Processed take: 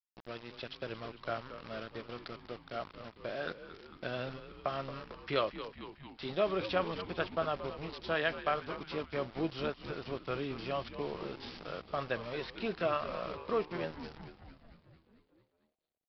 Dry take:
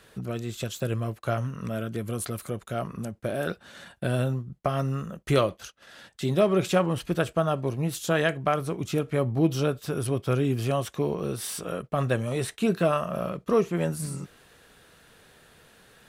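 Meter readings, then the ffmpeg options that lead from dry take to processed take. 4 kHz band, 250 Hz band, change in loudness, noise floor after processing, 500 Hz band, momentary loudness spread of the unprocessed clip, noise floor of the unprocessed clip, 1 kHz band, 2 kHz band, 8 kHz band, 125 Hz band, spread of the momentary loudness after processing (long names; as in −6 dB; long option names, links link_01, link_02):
−5.0 dB, −13.5 dB, −10.0 dB, −75 dBFS, −9.0 dB, 9 LU, −58 dBFS, −6.5 dB, −5.0 dB, below −30 dB, −18.5 dB, 13 LU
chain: -filter_complex "[0:a]highpass=frequency=660:poles=1,aresample=11025,aeval=exprs='val(0)*gte(abs(val(0)),0.0106)':channel_layout=same,aresample=44100,asplit=9[link_01][link_02][link_03][link_04][link_05][link_06][link_07][link_08][link_09];[link_02]adelay=225,afreqshift=-97,volume=-12dB[link_10];[link_03]adelay=450,afreqshift=-194,volume=-15.9dB[link_11];[link_04]adelay=675,afreqshift=-291,volume=-19.8dB[link_12];[link_05]adelay=900,afreqshift=-388,volume=-23.6dB[link_13];[link_06]adelay=1125,afreqshift=-485,volume=-27.5dB[link_14];[link_07]adelay=1350,afreqshift=-582,volume=-31.4dB[link_15];[link_08]adelay=1575,afreqshift=-679,volume=-35.3dB[link_16];[link_09]adelay=1800,afreqshift=-776,volume=-39.1dB[link_17];[link_01][link_10][link_11][link_12][link_13][link_14][link_15][link_16][link_17]amix=inputs=9:normalize=0,volume=-5dB"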